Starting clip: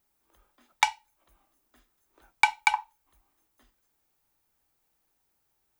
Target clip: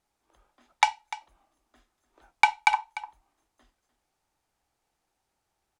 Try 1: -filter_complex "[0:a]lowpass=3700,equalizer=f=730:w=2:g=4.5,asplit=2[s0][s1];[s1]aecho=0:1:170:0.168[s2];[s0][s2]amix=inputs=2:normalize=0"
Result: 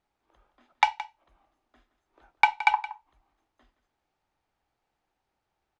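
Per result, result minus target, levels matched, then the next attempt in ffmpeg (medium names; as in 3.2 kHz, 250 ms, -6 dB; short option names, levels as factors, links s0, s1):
8 kHz band -10.0 dB; echo 127 ms early
-filter_complex "[0:a]lowpass=8400,equalizer=f=730:w=2:g=4.5,asplit=2[s0][s1];[s1]aecho=0:1:170:0.168[s2];[s0][s2]amix=inputs=2:normalize=0"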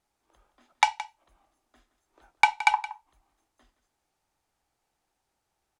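echo 127 ms early
-filter_complex "[0:a]lowpass=8400,equalizer=f=730:w=2:g=4.5,asplit=2[s0][s1];[s1]aecho=0:1:297:0.168[s2];[s0][s2]amix=inputs=2:normalize=0"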